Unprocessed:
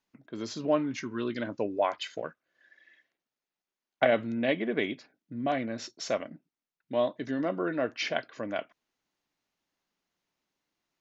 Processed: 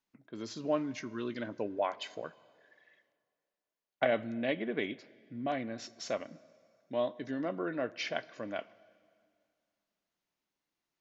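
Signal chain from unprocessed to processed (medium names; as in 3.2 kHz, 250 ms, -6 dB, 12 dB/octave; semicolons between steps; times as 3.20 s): plate-style reverb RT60 2.2 s, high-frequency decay 0.9×, DRR 19.5 dB; trim -5 dB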